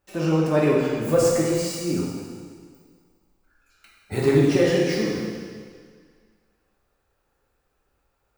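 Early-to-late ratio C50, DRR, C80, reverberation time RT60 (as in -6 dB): 0.0 dB, -4.5 dB, 1.5 dB, 1.9 s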